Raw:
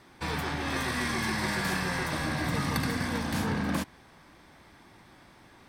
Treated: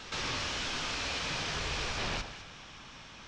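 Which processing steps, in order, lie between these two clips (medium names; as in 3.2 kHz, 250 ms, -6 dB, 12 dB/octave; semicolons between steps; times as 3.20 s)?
treble shelf 2.4 kHz +10.5 dB; peak limiter -19 dBFS, peak gain reduction 7 dB; sine folder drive 8 dB, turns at -21.5 dBFS; on a send: echo whose repeats swap between lows and highs 176 ms, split 910 Hz, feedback 55%, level -7 dB; on the sum: mistuned SSB -220 Hz 170–3600 Hz; speed mistake 45 rpm record played at 78 rpm; pre-echo 123 ms -12.5 dB; trim -8.5 dB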